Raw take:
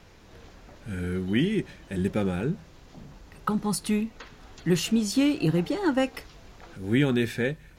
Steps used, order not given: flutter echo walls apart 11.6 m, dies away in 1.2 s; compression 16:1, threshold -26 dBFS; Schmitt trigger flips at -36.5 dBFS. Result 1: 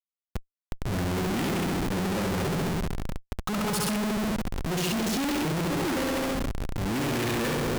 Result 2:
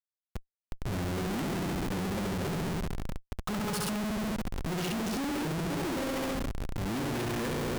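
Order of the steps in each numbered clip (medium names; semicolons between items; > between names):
flutter echo > Schmitt trigger > compression; flutter echo > compression > Schmitt trigger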